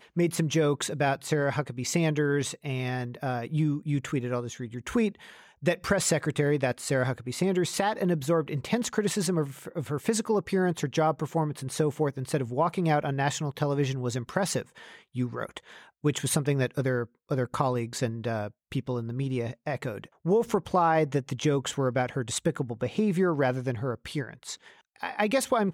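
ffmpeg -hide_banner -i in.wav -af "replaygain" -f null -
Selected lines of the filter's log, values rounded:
track_gain = +8.4 dB
track_peak = 0.186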